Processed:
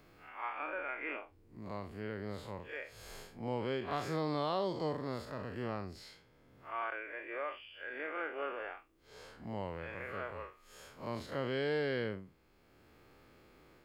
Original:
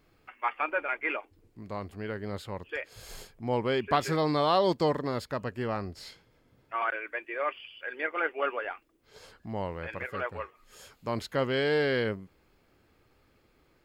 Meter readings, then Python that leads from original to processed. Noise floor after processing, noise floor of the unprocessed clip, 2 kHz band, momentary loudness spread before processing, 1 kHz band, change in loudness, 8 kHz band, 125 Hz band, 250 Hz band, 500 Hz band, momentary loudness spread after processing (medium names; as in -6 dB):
-66 dBFS, -67 dBFS, -8.5 dB, 15 LU, -9.5 dB, -8.5 dB, -9.0 dB, -7.0 dB, -7.0 dB, -8.0 dB, 16 LU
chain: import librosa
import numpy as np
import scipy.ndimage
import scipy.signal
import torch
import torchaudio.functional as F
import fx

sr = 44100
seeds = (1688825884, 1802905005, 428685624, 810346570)

y = fx.spec_blur(x, sr, span_ms=105.0)
y = fx.band_squash(y, sr, depth_pct=40)
y = y * librosa.db_to_amplitude(-5.5)